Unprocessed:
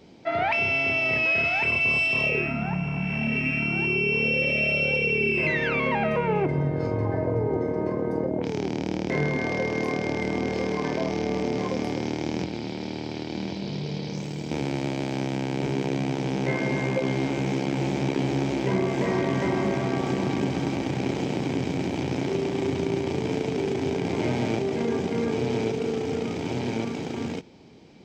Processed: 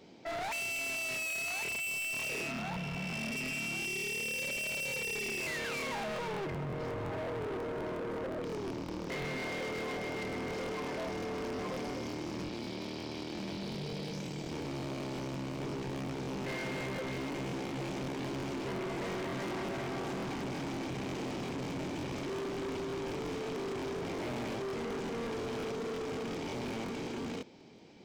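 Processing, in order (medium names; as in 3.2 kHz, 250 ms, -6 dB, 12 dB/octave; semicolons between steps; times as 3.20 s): bass shelf 130 Hz -10.5 dB; overload inside the chain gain 32.5 dB; crackling interface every 0.18 s, samples 1024, repeat, from 0.56 s; trim -3 dB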